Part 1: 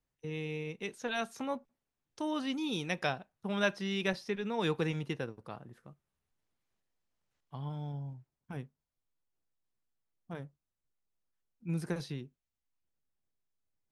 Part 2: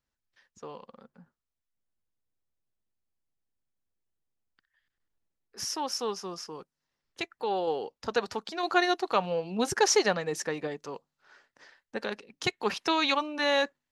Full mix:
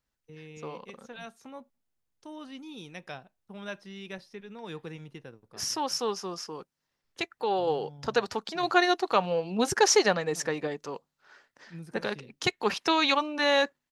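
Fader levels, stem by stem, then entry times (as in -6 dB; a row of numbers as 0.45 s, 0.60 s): -8.5 dB, +2.0 dB; 0.05 s, 0.00 s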